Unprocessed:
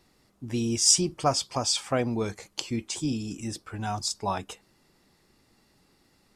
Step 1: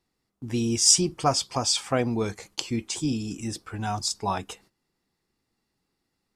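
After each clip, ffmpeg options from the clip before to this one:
-af "agate=range=0.158:threshold=0.00158:ratio=16:detection=peak,bandreject=f=590:w=12,volume=1.26"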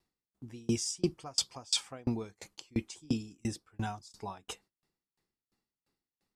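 -af "aeval=exprs='val(0)*pow(10,-33*if(lt(mod(2.9*n/s,1),2*abs(2.9)/1000),1-mod(2.9*n/s,1)/(2*abs(2.9)/1000),(mod(2.9*n/s,1)-2*abs(2.9)/1000)/(1-2*abs(2.9)/1000))/20)':c=same"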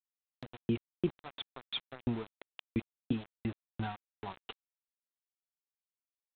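-af "aresample=8000,aeval=exprs='val(0)*gte(abs(val(0)),0.00944)':c=same,aresample=44100,acompressor=mode=upward:threshold=0.01:ratio=2.5,volume=0.841"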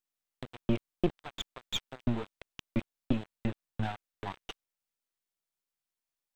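-af "aeval=exprs='if(lt(val(0),0),0.251*val(0),val(0))':c=same,volume=2.24"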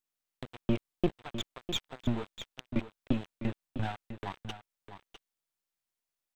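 -af "aecho=1:1:653:0.282"

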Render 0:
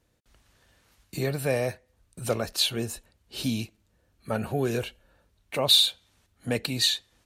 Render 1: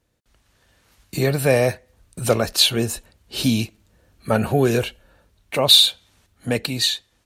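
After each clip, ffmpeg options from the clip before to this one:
-af "dynaudnorm=f=410:g=5:m=3.76"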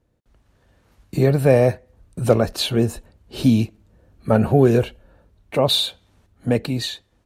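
-af "tiltshelf=f=1400:g=7,volume=0.75"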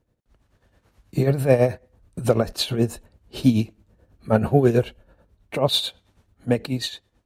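-af "tremolo=f=9.2:d=0.67"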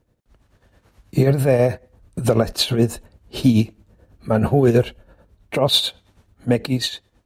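-af "alimiter=limit=0.316:level=0:latency=1:release=24,volume=1.78"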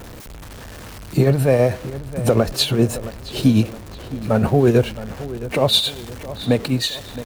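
-filter_complex "[0:a]aeval=exprs='val(0)+0.5*0.0282*sgn(val(0))':c=same,asplit=2[s0][s1];[s1]adelay=668,lowpass=f=4000:p=1,volume=0.178,asplit=2[s2][s3];[s3]adelay=668,lowpass=f=4000:p=1,volume=0.46,asplit=2[s4][s5];[s5]adelay=668,lowpass=f=4000:p=1,volume=0.46,asplit=2[s6][s7];[s7]adelay=668,lowpass=f=4000:p=1,volume=0.46[s8];[s0][s2][s4][s6][s8]amix=inputs=5:normalize=0"

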